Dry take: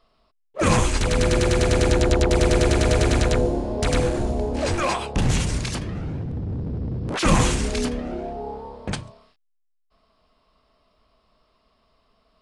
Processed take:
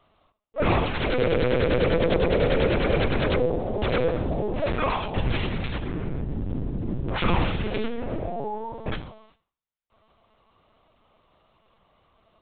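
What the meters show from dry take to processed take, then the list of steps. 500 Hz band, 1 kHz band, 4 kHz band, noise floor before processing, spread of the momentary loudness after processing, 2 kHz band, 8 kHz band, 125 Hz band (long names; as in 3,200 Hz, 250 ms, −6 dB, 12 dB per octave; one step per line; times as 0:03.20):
−1.0 dB, −2.0 dB, −4.5 dB, −68 dBFS, 10 LU, −2.0 dB, below −40 dB, −5.0 dB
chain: high-pass filter 79 Hz 12 dB per octave
in parallel at +2.5 dB: downward compressor 16 to 1, threshold −29 dBFS, peak gain reduction 16 dB
on the sum: floating-point word with a short mantissa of 4 bits
four-comb reverb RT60 0.47 s, combs from 30 ms, DRR 13 dB
linear-prediction vocoder at 8 kHz pitch kept
level −4.5 dB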